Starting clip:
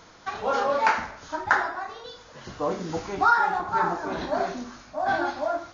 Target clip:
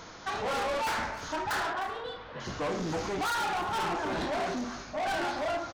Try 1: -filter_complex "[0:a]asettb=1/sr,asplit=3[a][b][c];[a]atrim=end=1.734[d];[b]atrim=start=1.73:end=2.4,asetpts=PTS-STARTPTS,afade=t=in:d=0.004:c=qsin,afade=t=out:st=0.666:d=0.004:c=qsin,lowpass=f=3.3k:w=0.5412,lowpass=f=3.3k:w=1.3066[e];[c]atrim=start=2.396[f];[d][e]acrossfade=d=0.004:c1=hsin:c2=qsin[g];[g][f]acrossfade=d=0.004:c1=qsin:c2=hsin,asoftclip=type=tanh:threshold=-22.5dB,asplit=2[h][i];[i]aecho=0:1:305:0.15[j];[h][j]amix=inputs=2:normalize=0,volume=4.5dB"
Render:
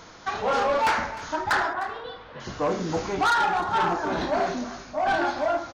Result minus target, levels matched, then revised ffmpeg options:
soft clip: distortion -6 dB
-filter_complex "[0:a]asettb=1/sr,asplit=3[a][b][c];[a]atrim=end=1.734[d];[b]atrim=start=1.73:end=2.4,asetpts=PTS-STARTPTS,afade=t=in:d=0.004:c=qsin,afade=t=out:st=0.666:d=0.004:c=qsin,lowpass=f=3.3k:w=0.5412,lowpass=f=3.3k:w=1.3066[e];[c]atrim=start=2.396[f];[d][e]acrossfade=d=0.004:c1=hsin:c2=qsin[g];[g][f]acrossfade=d=0.004:c1=qsin:c2=hsin,asoftclip=type=tanh:threshold=-33.5dB,asplit=2[h][i];[i]aecho=0:1:305:0.15[j];[h][j]amix=inputs=2:normalize=0,volume=4.5dB"

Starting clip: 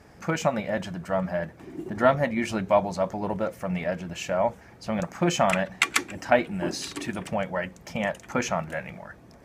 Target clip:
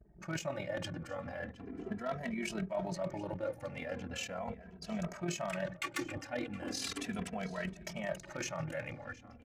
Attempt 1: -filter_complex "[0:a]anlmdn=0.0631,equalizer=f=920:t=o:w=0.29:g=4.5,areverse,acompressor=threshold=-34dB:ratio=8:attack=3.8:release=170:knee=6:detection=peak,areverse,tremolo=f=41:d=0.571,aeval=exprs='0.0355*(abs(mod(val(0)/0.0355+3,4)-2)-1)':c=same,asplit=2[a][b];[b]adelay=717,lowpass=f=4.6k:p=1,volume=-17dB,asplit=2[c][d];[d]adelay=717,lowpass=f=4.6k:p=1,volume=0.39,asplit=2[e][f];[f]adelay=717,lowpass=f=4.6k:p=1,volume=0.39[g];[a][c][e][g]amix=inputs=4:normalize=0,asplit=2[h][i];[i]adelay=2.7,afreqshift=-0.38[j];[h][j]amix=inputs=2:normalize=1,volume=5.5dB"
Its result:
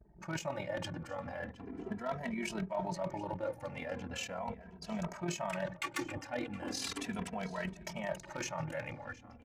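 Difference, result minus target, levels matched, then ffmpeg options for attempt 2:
1000 Hz band +3.0 dB
-filter_complex "[0:a]anlmdn=0.0631,equalizer=f=920:t=o:w=0.29:g=-5,areverse,acompressor=threshold=-34dB:ratio=8:attack=3.8:release=170:knee=6:detection=peak,areverse,tremolo=f=41:d=0.571,aeval=exprs='0.0355*(abs(mod(val(0)/0.0355+3,4)-2)-1)':c=same,asplit=2[a][b];[b]adelay=717,lowpass=f=4.6k:p=1,volume=-17dB,asplit=2[c][d];[d]adelay=717,lowpass=f=4.6k:p=1,volume=0.39,asplit=2[e][f];[f]adelay=717,lowpass=f=4.6k:p=1,volume=0.39[g];[a][c][e][g]amix=inputs=4:normalize=0,asplit=2[h][i];[i]adelay=2.7,afreqshift=-0.38[j];[h][j]amix=inputs=2:normalize=1,volume=5.5dB"

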